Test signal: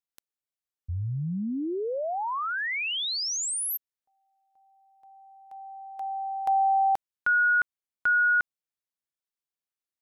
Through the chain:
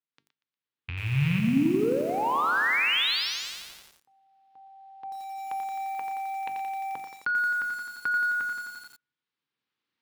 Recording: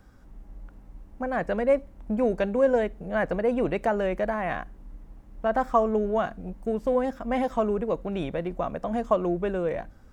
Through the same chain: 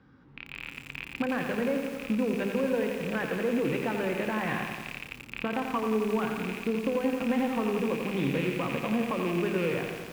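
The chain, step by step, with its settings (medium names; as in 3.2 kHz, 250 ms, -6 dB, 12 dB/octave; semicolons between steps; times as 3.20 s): rattle on loud lows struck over -42 dBFS, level -25 dBFS; recorder AGC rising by 7.8 dB/s; peaking EQ 630 Hz -10 dB 0.23 oct; hum notches 50/100/150/200/250/300/350/400 Hz; compression 2.5:1, threshold -25 dBFS; feedback comb 230 Hz, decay 0.26 s, harmonics all, mix 40%; saturation -22.5 dBFS; cabinet simulation 120–4100 Hz, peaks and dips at 140 Hz +9 dB, 280 Hz +6 dB, 690 Hz -6 dB; on a send: thinning echo 119 ms, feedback 35%, high-pass 830 Hz, level -11 dB; on the sum: bit-crushed delay 87 ms, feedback 80%, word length 8-bit, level -6 dB; trim +2.5 dB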